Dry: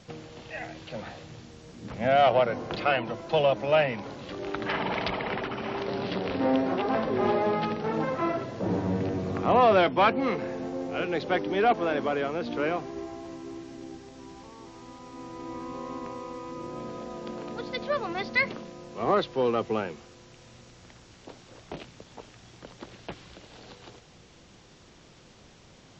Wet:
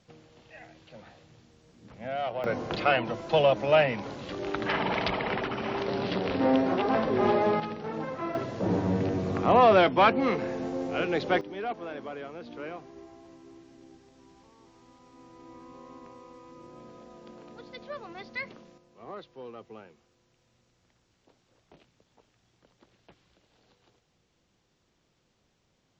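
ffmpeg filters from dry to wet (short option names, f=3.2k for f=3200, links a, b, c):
-af "asetnsamples=n=441:p=0,asendcmd='2.44 volume volume 1dB;7.6 volume volume -6dB;8.35 volume volume 1dB;11.41 volume volume -11dB;18.78 volume volume -18dB',volume=-11.5dB"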